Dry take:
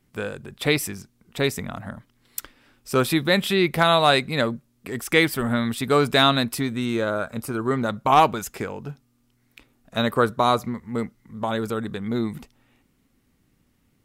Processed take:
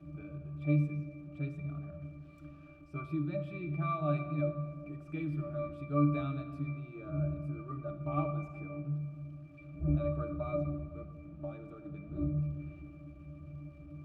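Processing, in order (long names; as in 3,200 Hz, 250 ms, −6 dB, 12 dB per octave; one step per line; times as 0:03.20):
converter with a step at zero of −30.5 dBFS
wind on the microphone 250 Hz −33 dBFS
resonances in every octave D, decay 0.38 s
on a send: convolution reverb RT60 1.9 s, pre-delay 6 ms, DRR 6 dB
on the sum: level −1.5 dB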